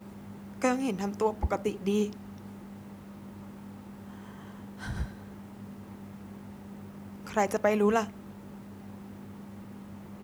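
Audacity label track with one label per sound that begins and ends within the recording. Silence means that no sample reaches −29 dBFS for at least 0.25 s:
0.620000	2.070000	sound
4.840000	5.050000	sound
7.270000	8.040000	sound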